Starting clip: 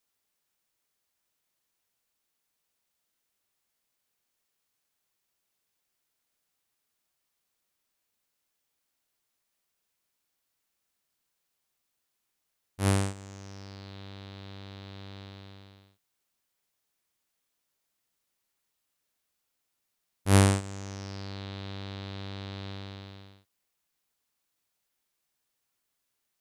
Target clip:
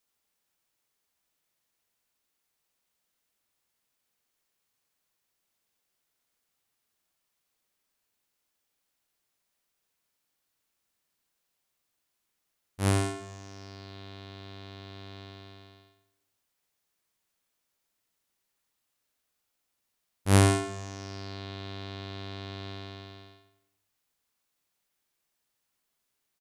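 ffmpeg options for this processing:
-filter_complex "[0:a]asplit=2[a][b];[b]adelay=89,lowpass=f=3.8k:p=1,volume=-5.5dB,asplit=2[c][d];[d]adelay=89,lowpass=f=3.8k:p=1,volume=0.48,asplit=2[e][f];[f]adelay=89,lowpass=f=3.8k:p=1,volume=0.48,asplit=2[g][h];[h]adelay=89,lowpass=f=3.8k:p=1,volume=0.48,asplit=2[i][j];[j]adelay=89,lowpass=f=3.8k:p=1,volume=0.48,asplit=2[k][l];[l]adelay=89,lowpass=f=3.8k:p=1,volume=0.48[m];[a][c][e][g][i][k][m]amix=inputs=7:normalize=0"

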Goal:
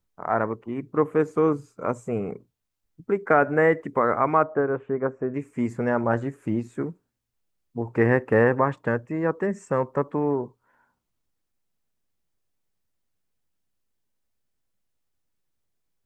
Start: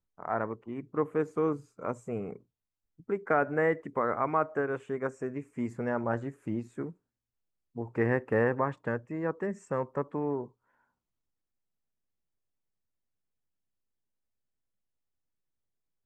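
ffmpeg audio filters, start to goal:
-filter_complex "[0:a]asettb=1/sr,asplit=3[a][b][c];[a]atrim=end=4.434[d];[b]atrim=start=4.43:end=5.34,asetpts=PTS-STARTPTS,afade=t=in:d=0.004:c=qsin,afade=t=out:st=0.906:d=0.004:c=qsin,lowpass=1.3k[e];[c]atrim=start=5.336[f];[d][e]acrossfade=d=0.004:c1=hsin:c2=qsin[g];[g][f]acrossfade=d=0.004:c1=qsin:c2=hsin,volume=7.5dB"

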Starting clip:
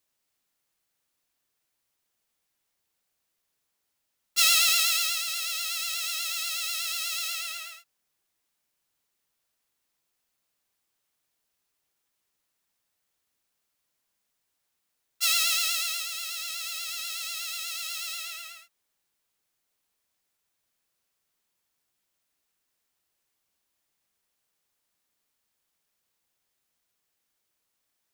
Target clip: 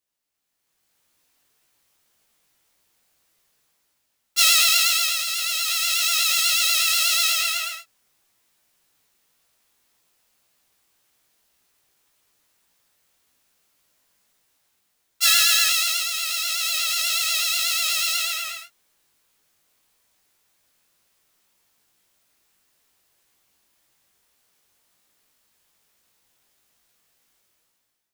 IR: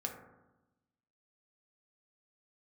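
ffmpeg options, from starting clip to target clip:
-filter_complex "[0:a]flanger=delay=16:depth=5.2:speed=1.8,dynaudnorm=f=310:g=5:m=16dB,asettb=1/sr,asplit=3[a][b][c];[a]atrim=end=15.254[d];[b]atrim=start=15.25:end=15.69,asetpts=PTS-STARTPTS,afade=t=in:d=0.004:c=qsin,afade=t=out:st=0.436:d=0.004:c=qsin,aeval=exprs='val(0)+0.0316*sin(2*PI*1700*n/s)':c=same[e];[c]atrim=start=15.686[f];[d][e]acrossfade=d=0.004:c1=hsin:c2=qsin[g];[g][f]acrossfade=d=0.004:c1=qsin:c2=hsin,volume=-1dB"

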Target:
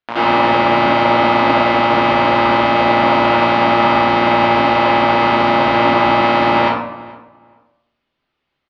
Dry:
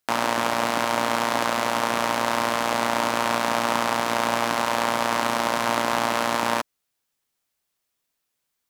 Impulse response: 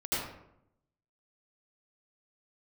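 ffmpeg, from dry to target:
-filter_complex "[0:a]lowpass=f=3.6k:w=0.5412,lowpass=f=3.6k:w=1.3066,asplit=2[a][b];[b]adelay=428,lowpass=f=1.8k:p=1,volume=-19dB,asplit=2[c][d];[d]adelay=428,lowpass=f=1.8k:p=1,volume=0.18[e];[a][c][e]amix=inputs=3:normalize=0[f];[1:a]atrim=start_sample=2205[g];[f][g]afir=irnorm=-1:irlink=0,volume=4dB"

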